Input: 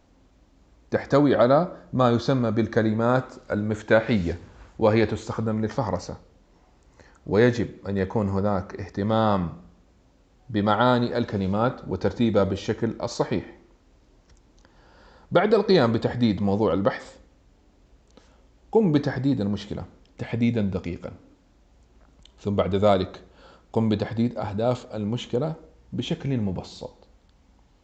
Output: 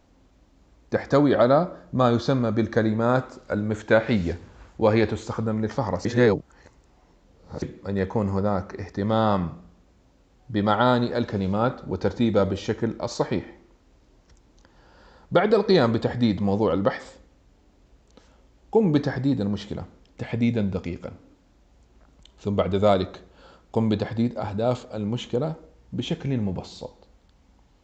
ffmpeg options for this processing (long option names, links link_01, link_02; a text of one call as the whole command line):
ffmpeg -i in.wav -filter_complex "[0:a]asplit=3[link_01][link_02][link_03];[link_01]atrim=end=6.052[link_04];[link_02]atrim=start=6.048:end=7.622,asetpts=PTS-STARTPTS,areverse[link_05];[link_03]atrim=start=7.618[link_06];[link_04][link_05]acrossfade=duration=0.004:curve1=hsin:curve2=hsin[link_07];[link_07][link_06]acrossfade=duration=0.004:curve1=hsin:curve2=hsin" out.wav